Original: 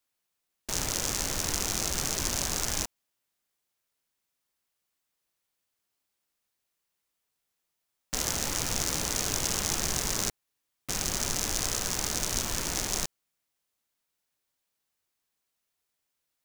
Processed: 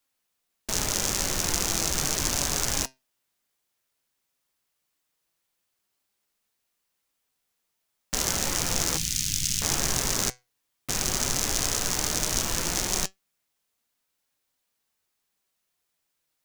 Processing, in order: 8.97–9.62 Chebyshev band-stop 160–2900 Hz, order 2; flange 0.14 Hz, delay 3.6 ms, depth 4.9 ms, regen +79%; gain +8 dB

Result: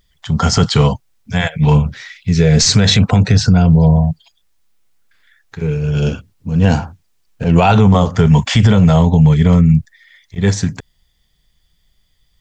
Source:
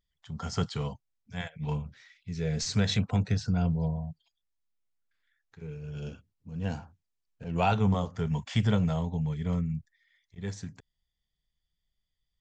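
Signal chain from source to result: maximiser +23.5 dB; gain -1 dB

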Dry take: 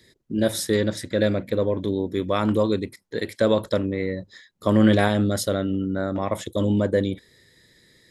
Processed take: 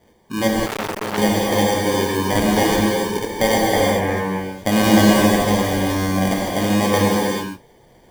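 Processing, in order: sample-and-hold 33×; 3.71–4.17 resonant high shelf 2900 Hz -8.5 dB, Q 1.5; non-linear reverb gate 0.45 s flat, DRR -4 dB; 0.66–1.18 core saturation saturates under 2300 Hz

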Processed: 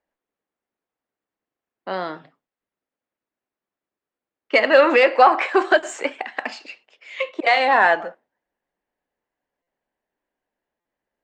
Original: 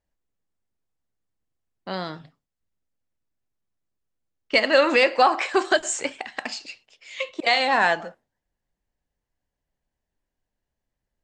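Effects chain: one diode to ground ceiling -6.5 dBFS; three-band isolator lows -21 dB, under 240 Hz, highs -15 dB, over 2800 Hz; stuck buffer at 9.62/10.8, samples 256, times 8; gain +6 dB

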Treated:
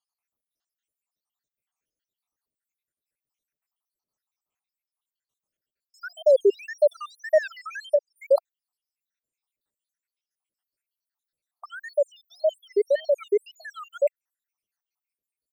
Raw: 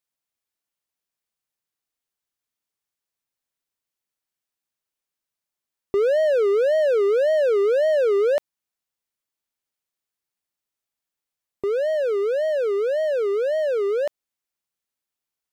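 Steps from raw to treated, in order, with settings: random spectral dropouts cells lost 84%; 7.61–8.16 treble ducked by the level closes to 440 Hz, closed at -18.5 dBFS; gain +4.5 dB

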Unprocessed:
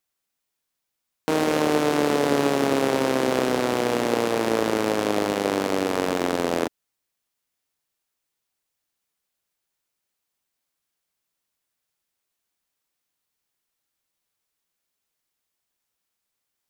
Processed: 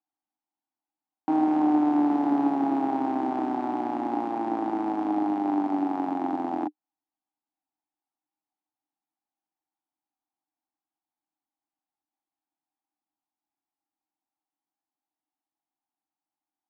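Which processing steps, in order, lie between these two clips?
double band-pass 490 Hz, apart 1.4 oct; gain +4.5 dB

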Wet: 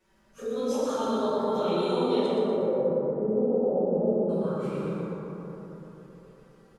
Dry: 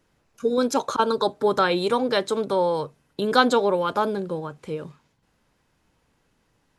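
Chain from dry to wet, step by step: phase scrambler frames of 0.1 s; 2.26–4.29 steep low-pass 650 Hz 36 dB/oct; limiter -16 dBFS, peak gain reduction 7 dB; compressor 2:1, threshold -39 dBFS, peak gain reduction 10.5 dB; envelope flanger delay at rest 5.5 ms, full sweep at -30.5 dBFS; feedback echo 0.121 s, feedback 44%, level -5 dB; plate-style reverb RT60 4 s, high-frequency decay 0.25×, DRR -7 dB

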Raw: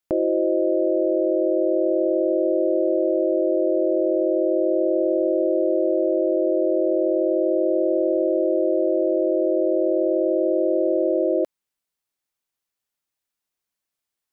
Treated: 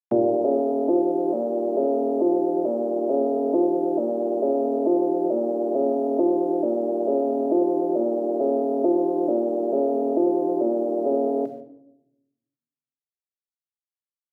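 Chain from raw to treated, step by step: arpeggiated vocoder minor triad, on A#2, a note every 0.442 s; reverb removal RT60 1.9 s; notches 50/100/150/200/250 Hz; limiter -16.5 dBFS, peak gain reduction 5 dB; bit-crush 12-bit; vibrato 8.6 Hz 16 cents; shoebox room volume 2300 m³, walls furnished, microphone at 1.4 m; gain +5.5 dB

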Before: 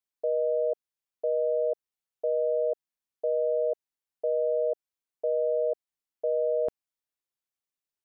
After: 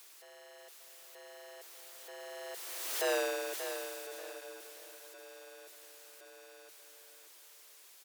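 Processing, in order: infinite clipping; Doppler pass-by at 3.1, 24 m/s, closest 3.2 m; steep high-pass 310 Hz 96 dB/oct; feedback echo 0.583 s, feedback 31%, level -9 dB; mismatched tape noise reduction encoder only

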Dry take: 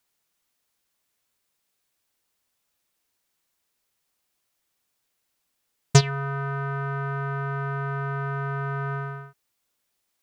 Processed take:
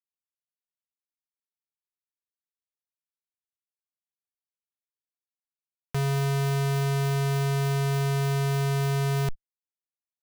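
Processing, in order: per-bin compression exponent 0.6; high shelf 4100 Hz -5.5 dB; Schmitt trigger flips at -28 dBFS; sample leveller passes 5

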